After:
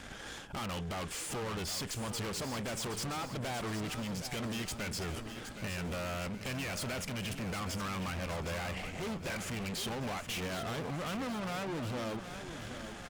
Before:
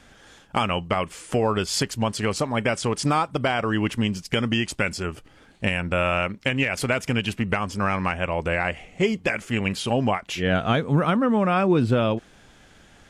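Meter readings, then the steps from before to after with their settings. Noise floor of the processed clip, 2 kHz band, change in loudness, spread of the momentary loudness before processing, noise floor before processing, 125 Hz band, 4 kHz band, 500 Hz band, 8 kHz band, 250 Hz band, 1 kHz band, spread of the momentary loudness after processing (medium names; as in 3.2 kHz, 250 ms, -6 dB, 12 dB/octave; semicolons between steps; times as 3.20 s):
-46 dBFS, -14.0 dB, -13.5 dB, 6 LU, -53 dBFS, -13.0 dB, -10.0 dB, -15.5 dB, -5.5 dB, -14.5 dB, -14.5 dB, 4 LU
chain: compression 4:1, threshold -28 dBFS, peak gain reduction 11.5 dB; valve stage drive 45 dB, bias 0.65; on a send: feedback delay 768 ms, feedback 56%, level -10 dB; on the sum: trim +8.5 dB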